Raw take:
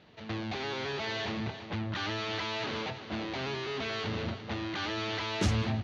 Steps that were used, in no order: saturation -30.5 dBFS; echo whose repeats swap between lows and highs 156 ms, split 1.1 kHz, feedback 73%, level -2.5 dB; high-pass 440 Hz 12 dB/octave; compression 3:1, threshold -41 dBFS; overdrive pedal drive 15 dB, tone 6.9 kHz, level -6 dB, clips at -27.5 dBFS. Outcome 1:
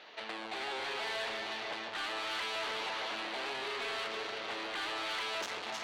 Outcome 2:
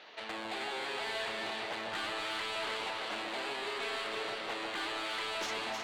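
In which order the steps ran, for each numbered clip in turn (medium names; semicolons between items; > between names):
echo whose repeats swap between lows and highs > saturation > compression > high-pass > overdrive pedal; high-pass > compression > overdrive pedal > saturation > echo whose repeats swap between lows and highs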